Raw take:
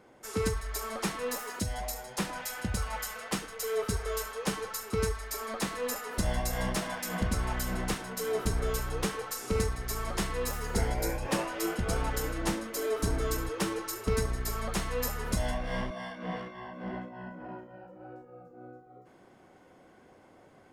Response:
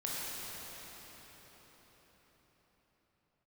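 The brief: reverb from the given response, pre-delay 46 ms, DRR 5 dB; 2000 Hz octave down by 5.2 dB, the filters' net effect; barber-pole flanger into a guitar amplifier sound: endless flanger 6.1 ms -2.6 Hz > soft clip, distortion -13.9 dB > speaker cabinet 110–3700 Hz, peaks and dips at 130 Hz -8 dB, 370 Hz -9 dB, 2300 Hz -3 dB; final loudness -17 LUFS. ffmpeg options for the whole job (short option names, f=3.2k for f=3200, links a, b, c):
-filter_complex "[0:a]equalizer=f=2k:t=o:g=-6,asplit=2[a][b];[1:a]atrim=start_sample=2205,adelay=46[c];[b][c]afir=irnorm=-1:irlink=0,volume=-9.5dB[d];[a][d]amix=inputs=2:normalize=0,asplit=2[e][f];[f]adelay=6.1,afreqshift=-2.6[g];[e][g]amix=inputs=2:normalize=1,asoftclip=threshold=-29.5dB,highpass=110,equalizer=f=130:t=q:w=4:g=-8,equalizer=f=370:t=q:w=4:g=-9,equalizer=f=2.3k:t=q:w=4:g=-3,lowpass=f=3.7k:w=0.5412,lowpass=f=3.7k:w=1.3066,volume=25dB"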